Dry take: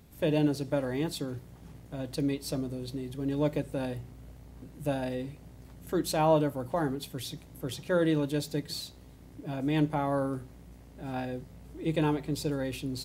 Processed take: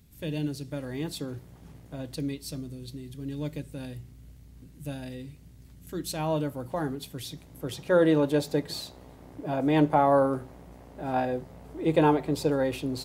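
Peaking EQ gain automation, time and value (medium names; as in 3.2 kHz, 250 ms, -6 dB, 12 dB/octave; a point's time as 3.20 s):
peaking EQ 740 Hz 2.4 oct
0.66 s -11.5 dB
1.24 s 0 dB
1.94 s 0 dB
2.51 s -11.5 dB
5.92 s -11.5 dB
6.60 s -1.5 dB
7.31 s -1.5 dB
8.23 s +10.5 dB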